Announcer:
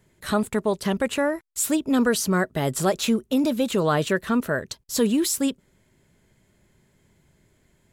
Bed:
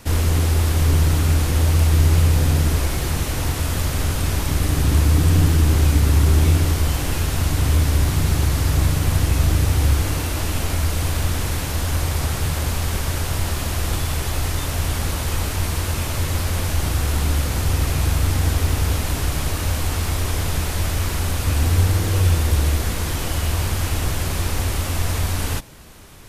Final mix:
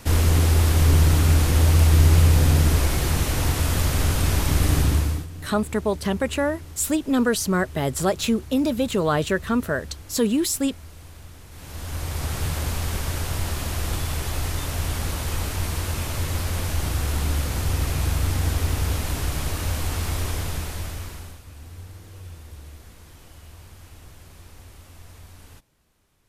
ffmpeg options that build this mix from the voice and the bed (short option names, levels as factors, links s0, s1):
-filter_complex "[0:a]adelay=5200,volume=1[s0];[1:a]volume=7.94,afade=t=out:st=4.75:d=0.52:silence=0.0794328,afade=t=in:st=11.5:d=0.92:silence=0.125893,afade=t=out:st=20.22:d=1.2:silence=0.105925[s1];[s0][s1]amix=inputs=2:normalize=0"